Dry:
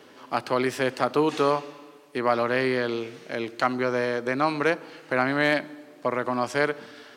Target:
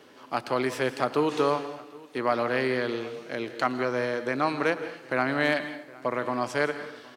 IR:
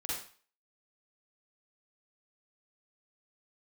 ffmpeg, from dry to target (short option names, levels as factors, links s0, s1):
-filter_complex "[0:a]aecho=1:1:764:0.075,asplit=2[s0][s1];[1:a]atrim=start_sample=2205,adelay=113[s2];[s1][s2]afir=irnorm=-1:irlink=0,volume=0.2[s3];[s0][s3]amix=inputs=2:normalize=0,volume=0.75"